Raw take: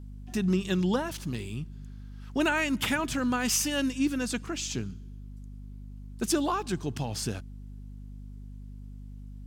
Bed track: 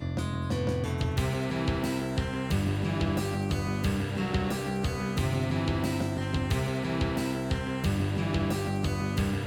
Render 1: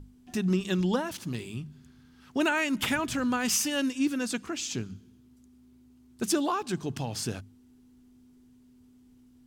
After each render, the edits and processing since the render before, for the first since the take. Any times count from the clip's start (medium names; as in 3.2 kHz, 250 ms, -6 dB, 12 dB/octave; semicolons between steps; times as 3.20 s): hum notches 50/100/150/200 Hz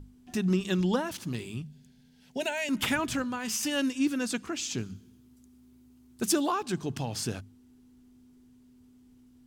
1.62–2.69 s: static phaser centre 320 Hz, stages 6; 3.22–3.63 s: feedback comb 110 Hz, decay 0.31 s; 4.77–6.50 s: treble shelf 6.4 kHz -> 9.5 kHz +6 dB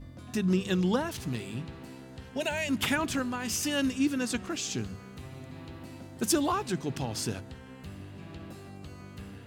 add bed track -16 dB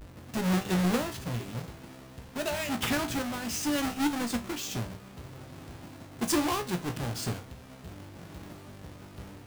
square wave that keeps the level; feedback comb 59 Hz, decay 0.24 s, harmonics all, mix 80%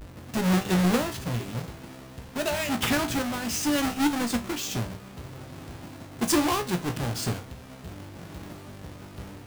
trim +4 dB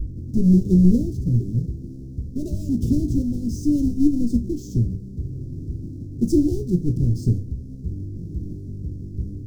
Chebyshev band-stop 370–5400 Hz, order 3; tilt EQ -4 dB/octave